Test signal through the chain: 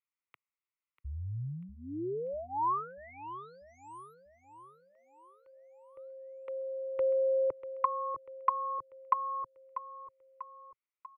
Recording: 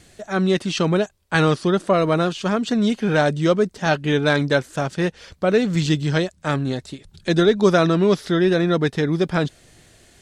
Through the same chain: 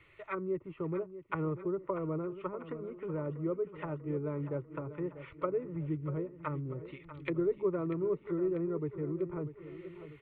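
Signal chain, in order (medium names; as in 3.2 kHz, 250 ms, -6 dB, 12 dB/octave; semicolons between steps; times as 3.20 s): graphic EQ 125/250/500/2000/8000 Hz +6/-3/-10/+9/-11 dB; low-pass that closes with the level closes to 400 Hz, closed at -19 dBFS; three-band isolator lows -13 dB, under 240 Hz, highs -21 dB, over 2.3 kHz; static phaser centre 1.1 kHz, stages 8; on a send: feedback delay 642 ms, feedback 53%, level -13 dB; on the sum: trim -2 dB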